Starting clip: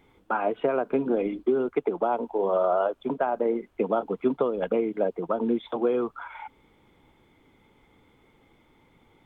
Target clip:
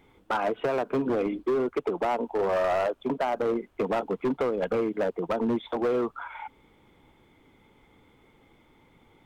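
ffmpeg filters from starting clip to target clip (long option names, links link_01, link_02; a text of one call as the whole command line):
ffmpeg -i in.wav -af "asoftclip=type=hard:threshold=-22.5dB,volume=1dB" out.wav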